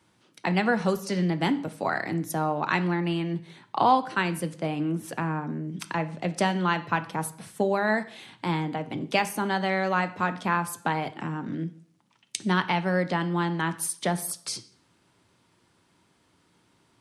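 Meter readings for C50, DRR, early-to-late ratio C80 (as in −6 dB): 15.5 dB, 11.0 dB, 19.0 dB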